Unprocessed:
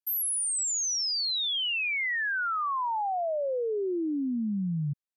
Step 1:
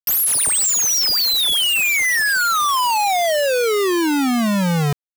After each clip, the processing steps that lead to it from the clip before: vibrato 5.3 Hz 25 cents; bit-crush 5-bit; gain +9 dB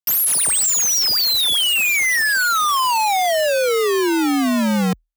frequency shift +39 Hz

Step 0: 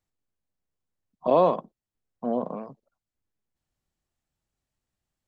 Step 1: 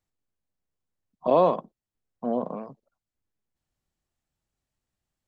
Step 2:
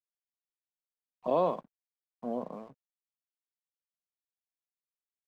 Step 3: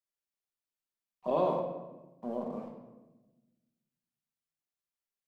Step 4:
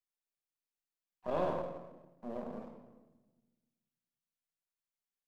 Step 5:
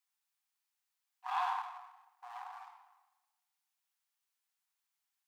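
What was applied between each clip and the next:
nothing audible
crossover distortion -54.5 dBFS; gain -7.5 dB
reverb RT60 1.1 s, pre-delay 5 ms, DRR 1.5 dB; gain -2.5 dB
half-wave gain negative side -7 dB; gain -2.5 dB
brick-wall FIR high-pass 720 Hz; gain +7 dB

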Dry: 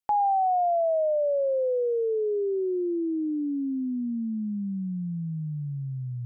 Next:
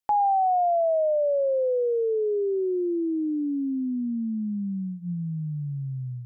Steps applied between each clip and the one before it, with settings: notches 60/120/180 Hz; gain +1.5 dB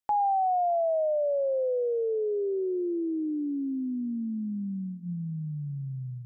darkening echo 0.604 s, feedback 29%, low-pass 920 Hz, level -24 dB; gain -3.5 dB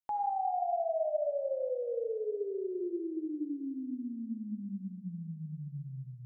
reverb RT60 1.5 s, pre-delay 30 ms, DRR 3.5 dB; gain -8.5 dB

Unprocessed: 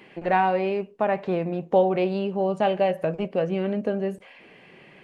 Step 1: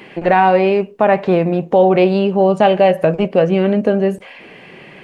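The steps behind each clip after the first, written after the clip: maximiser +12.5 dB; gain -1 dB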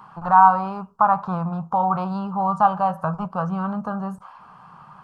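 EQ curve 170 Hz 0 dB, 360 Hz -22 dB, 580 Hz -13 dB, 900 Hz +10 dB, 1300 Hz +14 dB, 2000 Hz -25 dB, 5100 Hz -6 dB; gain -5.5 dB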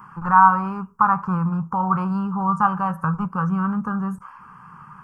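fixed phaser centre 1600 Hz, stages 4; gain +5 dB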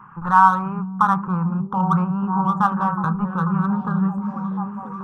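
Wiener smoothing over 9 samples; delay with a stepping band-pass 0.491 s, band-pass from 180 Hz, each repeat 0.7 oct, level -1.5 dB

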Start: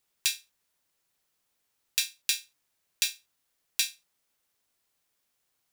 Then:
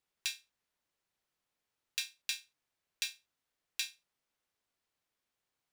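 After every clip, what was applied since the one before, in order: high shelf 6100 Hz -11 dB; gain -5 dB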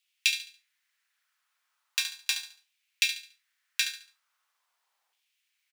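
LFO high-pass saw down 0.39 Hz 790–2800 Hz; on a send: feedback echo 71 ms, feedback 32%, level -9 dB; on the sum: gain +7 dB

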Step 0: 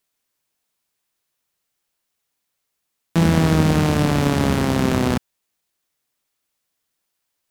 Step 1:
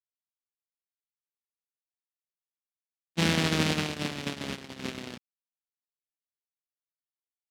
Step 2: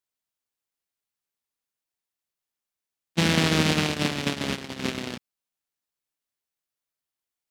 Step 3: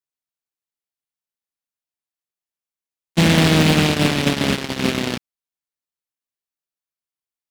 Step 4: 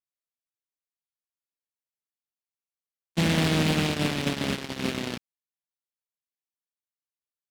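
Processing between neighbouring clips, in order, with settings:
gate -15 dBFS, range -40 dB; weighting filter D; gain -7 dB
limiter -13.5 dBFS, peak gain reduction 5.5 dB; gain +7 dB
sample leveller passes 3
vibrato 1.1 Hz 8.2 cents; gain -9 dB

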